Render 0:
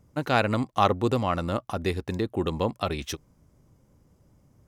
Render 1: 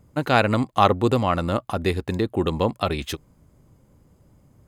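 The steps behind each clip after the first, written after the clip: band-stop 5.7 kHz, Q 5.6; trim +4.5 dB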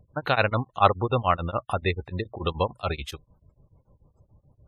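spectral gate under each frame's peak -25 dB strong; peaking EQ 260 Hz -11.5 dB 1.5 oct; tremolo of two beating tones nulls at 6.9 Hz; trim +3 dB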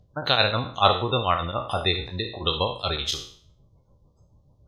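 spectral sustain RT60 0.50 s; high-order bell 4.6 kHz +12.5 dB 1.3 oct; trim -2 dB

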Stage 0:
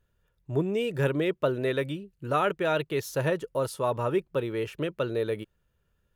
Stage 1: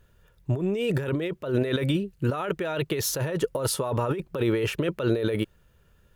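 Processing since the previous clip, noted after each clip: compressor with a negative ratio -33 dBFS, ratio -1; trim +7 dB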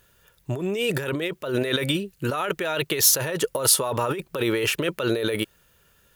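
tilt EQ +2.5 dB/octave; trim +4 dB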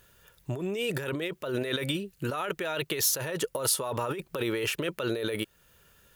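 compression 1.5:1, threshold -38 dBFS, peak gain reduction 9 dB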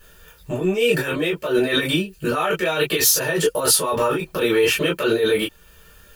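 reverberation, pre-delay 3 ms, DRR -5.5 dB; trim -1.5 dB

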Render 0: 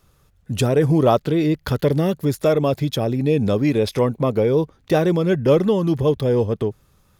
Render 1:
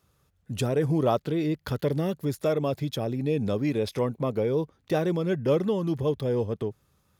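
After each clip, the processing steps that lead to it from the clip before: high-pass 60 Hz; trim -8 dB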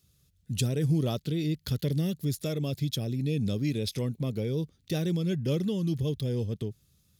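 FFT filter 170 Hz 0 dB, 1 kHz -18 dB, 3.9 kHz +3 dB; trim +1.5 dB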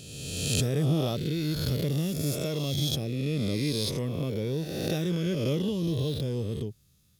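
reverse spectral sustain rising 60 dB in 1.58 s; trim -1.5 dB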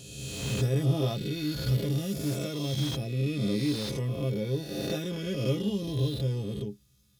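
inharmonic resonator 61 Hz, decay 0.24 s, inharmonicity 0.03; slew-rate limiter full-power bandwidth 38 Hz; trim +5.5 dB

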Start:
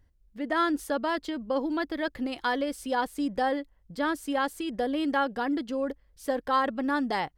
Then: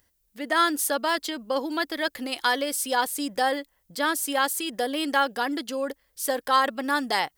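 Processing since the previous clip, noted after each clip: RIAA curve recording; trim +4 dB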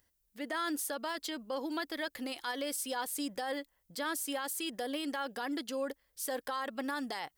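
peak limiter -20.5 dBFS, peak gain reduction 11.5 dB; trim -6.5 dB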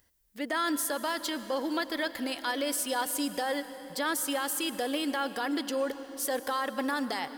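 reverberation RT60 4.2 s, pre-delay 101 ms, DRR 11.5 dB; trim +5.5 dB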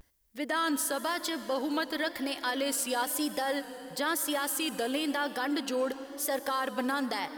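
vibrato 0.99 Hz 84 cents

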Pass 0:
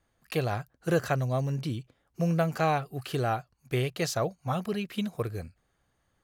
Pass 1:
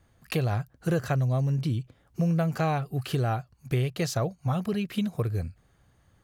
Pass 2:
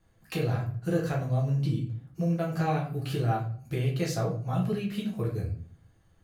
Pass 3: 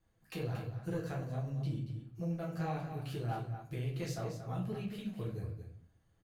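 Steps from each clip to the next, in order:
peaking EQ 96 Hz +8.5 dB 2.3 oct; compression 2:1, threshold -36 dBFS, peak gain reduction 10.5 dB; trim +6 dB
reverberation RT60 0.50 s, pre-delay 6 ms, DRR -3 dB; trim -7.5 dB
single-diode clipper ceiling -19 dBFS; flange 1.4 Hz, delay 1.9 ms, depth 8.3 ms, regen -59%; delay 230 ms -9.5 dB; trim -5 dB

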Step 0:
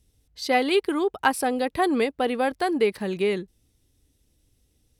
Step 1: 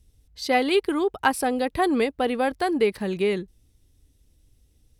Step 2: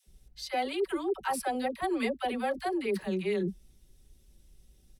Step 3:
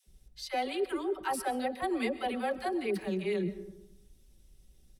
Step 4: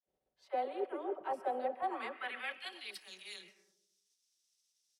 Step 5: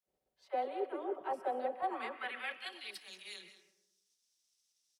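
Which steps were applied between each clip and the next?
bass shelf 84 Hz +10 dB
comb 5.3 ms, depth 68%; reverse; compression 6:1, threshold -28 dBFS, peak gain reduction 14.5 dB; reverse; phase dispersion lows, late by 75 ms, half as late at 480 Hz
reverberation RT60 0.90 s, pre-delay 90 ms, DRR 13.5 dB; trim -1.5 dB
spectral contrast reduction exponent 0.69; spectral noise reduction 11 dB; band-pass sweep 610 Hz -> 5.6 kHz, 1.68–3.04 s; trim +1.5 dB
delay 188 ms -14 dB

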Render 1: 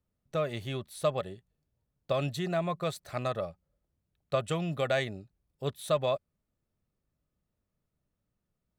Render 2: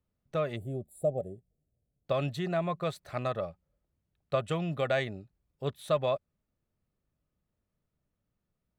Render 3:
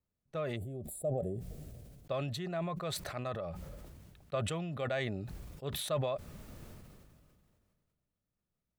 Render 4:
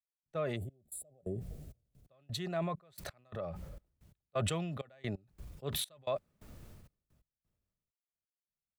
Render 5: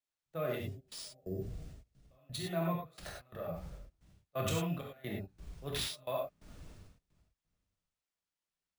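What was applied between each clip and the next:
time-frequency box 0.56–2.06 s, 790–7000 Hz -27 dB; tone controls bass 0 dB, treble -7 dB
decay stretcher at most 27 dB/s; trim -7 dB
trance gate "..xxxx..x" 131 bpm -24 dB; three bands expanded up and down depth 40%
gated-style reverb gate 130 ms flat, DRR -2.5 dB; careless resampling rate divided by 3×, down none, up hold; trim -4 dB

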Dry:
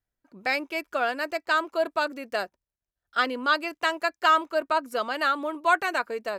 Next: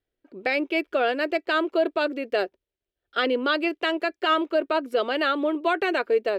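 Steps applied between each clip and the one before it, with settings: FFT filter 200 Hz 0 dB, 390 Hz +14 dB, 1 kHz -3 dB, 3.2 kHz +7 dB, 6.5 kHz -9 dB; peak limiter -13.5 dBFS, peak gain reduction 7.5 dB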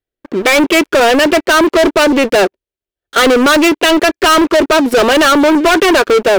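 waveshaping leveller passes 5; trim +7.5 dB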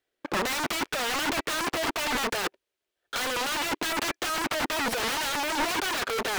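integer overflow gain 13.5 dB; overdrive pedal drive 24 dB, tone 4.8 kHz, clips at -13.5 dBFS; trim -8.5 dB

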